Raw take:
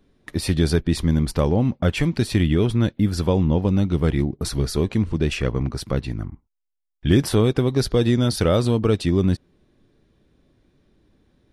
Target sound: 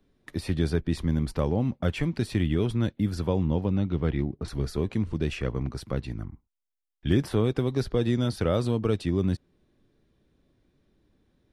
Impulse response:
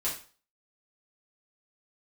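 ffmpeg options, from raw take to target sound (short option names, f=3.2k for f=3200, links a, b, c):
-filter_complex "[0:a]acrossover=split=110|2900[a][b][c];[c]alimiter=level_in=3.5dB:limit=-24dB:level=0:latency=1:release=354,volume=-3.5dB[d];[a][b][d]amix=inputs=3:normalize=0,asettb=1/sr,asplit=3[e][f][g];[e]atrim=end=3.654[h];[f]atrim=start=3.65:end=4.48,asetpts=PTS-STARTPTS,afade=t=in:d=0.004:c=qsin,afade=t=out:st=0.826:d=0.004:c=qsin,lowpass=3.8k[i];[g]atrim=start=4.476[j];[h][i]acrossfade=d=0.004:c1=hsin:c2=qsin[k];[k][j]acrossfade=d=0.004:c1=qsin:c2=hsin,volume=-6.5dB"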